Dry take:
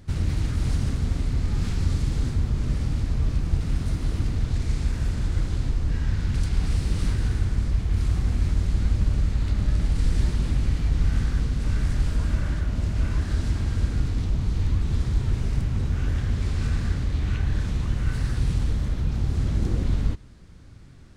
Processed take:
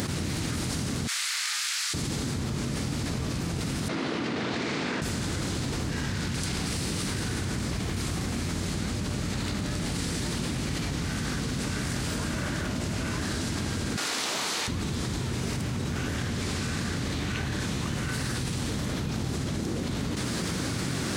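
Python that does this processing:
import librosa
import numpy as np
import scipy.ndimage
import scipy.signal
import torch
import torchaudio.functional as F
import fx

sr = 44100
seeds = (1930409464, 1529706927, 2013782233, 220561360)

y = fx.highpass(x, sr, hz=1400.0, slope=24, at=(1.07, 1.94))
y = fx.bandpass_edges(y, sr, low_hz=270.0, high_hz=3100.0, at=(3.88, 5.02))
y = fx.highpass(y, sr, hz=700.0, slope=12, at=(13.96, 14.68))
y = scipy.signal.sosfilt(scipy.signal.butter(2, 180.0, 'highpass', fs=sr, output='sos'), y)
y = fx.high_shelf(y, sr, hz=4500.0, db=8.0)
y = fx.env_flatten(y, sr, amount_pct=100)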